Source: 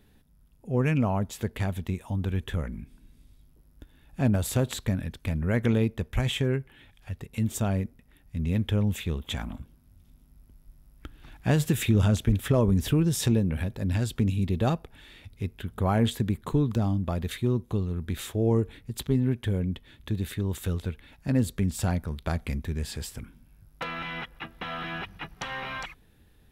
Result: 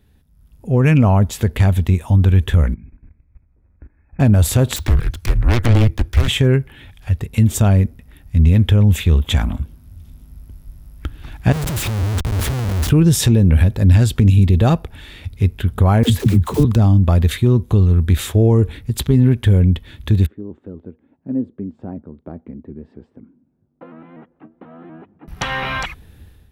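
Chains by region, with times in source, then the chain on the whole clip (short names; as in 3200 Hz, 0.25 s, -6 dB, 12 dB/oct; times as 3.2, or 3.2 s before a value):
2.74–4.2 brick-wall FIR low-pass 2600 Hz + notches 50/100/150/200/250/300/350/400/450 Hz + level quantiser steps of 18 dB
4.76–6.28 self-modulated delay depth 0.7 ms + frequency shift -120 Hz
11.52–12.9 bell 1500 Hz -12 dB 3 oct + compressor 10:1, threshold -30 dBFS + Schmitt trigger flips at -43.5 dBFS
16.03–16.65 block floating point 5-bit + dispersion lows, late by 70 ms, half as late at 330 Hz
20.26–25.28 ladder band-pass 330 Hz, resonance 40% + shaped vibrato saw up 4.1 Hz, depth 100 cents
whole clip: bell 75 Hz +9.5 dB 1.2 oct; limiter -15 dBFS; AGC gain up to 12 dB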